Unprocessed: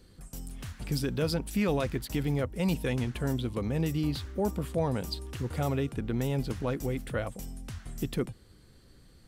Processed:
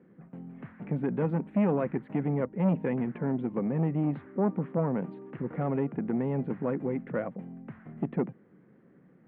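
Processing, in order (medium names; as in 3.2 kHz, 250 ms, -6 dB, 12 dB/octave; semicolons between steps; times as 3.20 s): elliptic band-pass 170–2100 Hz, stop band 40 dB; tilt EQ -2.5 dB/octave; transformer saturation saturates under 350 Hz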